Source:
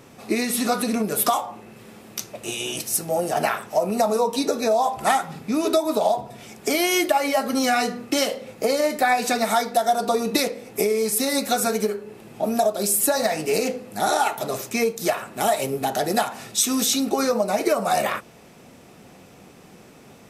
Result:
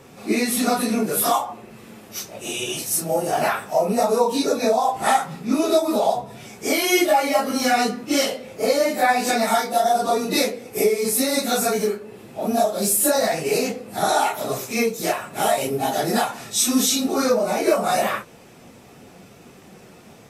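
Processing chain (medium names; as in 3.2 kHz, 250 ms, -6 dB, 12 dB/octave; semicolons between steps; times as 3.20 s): phase randomisation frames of 100 ms; trim +1.5 dB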